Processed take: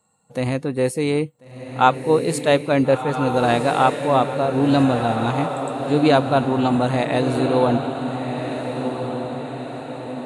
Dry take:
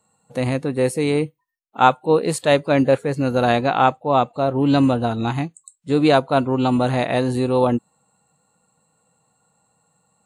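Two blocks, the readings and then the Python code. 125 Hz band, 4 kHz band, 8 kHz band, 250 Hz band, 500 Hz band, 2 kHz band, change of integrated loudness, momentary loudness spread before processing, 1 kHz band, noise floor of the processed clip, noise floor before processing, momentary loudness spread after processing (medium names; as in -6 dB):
0.0 dB, 0.0 dB, 0.0 dB, 0.0 dB, 0.0 dB, 0.0 dB, -1.0 dB, 7 LU, 0.0 dB, -43 dBFS, -68 dBFS, 12 LU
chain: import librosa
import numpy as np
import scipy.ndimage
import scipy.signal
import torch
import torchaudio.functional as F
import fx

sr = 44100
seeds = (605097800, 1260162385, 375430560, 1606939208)

y = fx.echo_diffused(x, sr, ms=1411, feedback_pct=53, wet_db=-7)
y = y * librosa.db_to_amplitude(-1.0)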